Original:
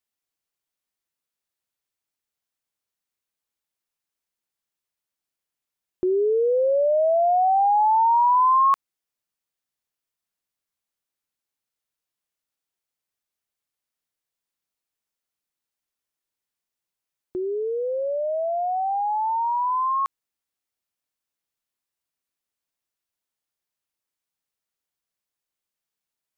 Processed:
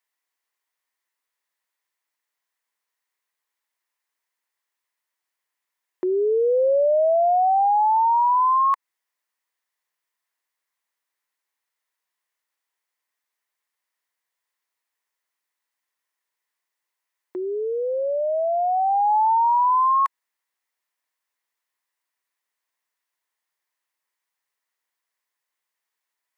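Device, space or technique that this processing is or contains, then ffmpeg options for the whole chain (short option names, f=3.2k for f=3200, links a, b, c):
laptop speaker: -af "highpass=370,equalizer=f=1k:t=o:w=0.4:g=8.5,equalizer=f=1.9k:t=o:w=0.45:g=10,alimiter=limit=-17dB:level=0:latency=1:release=94,volume=2dB"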